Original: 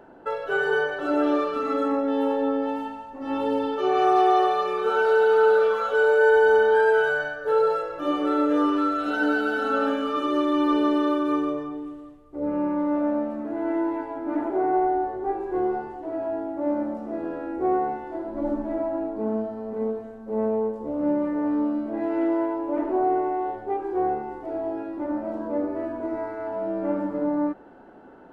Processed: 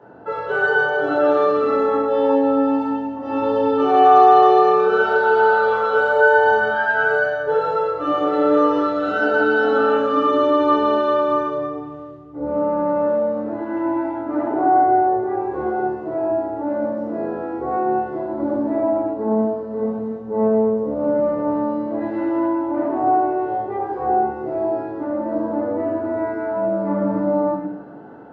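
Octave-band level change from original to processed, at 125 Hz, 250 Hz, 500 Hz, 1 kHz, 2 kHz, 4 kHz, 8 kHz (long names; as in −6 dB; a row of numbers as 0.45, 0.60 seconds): +9.5 dB, +3.0 dB, +5.0 dB, +8.0 dB, +7.0 dB, +2.5 dB, can't be measured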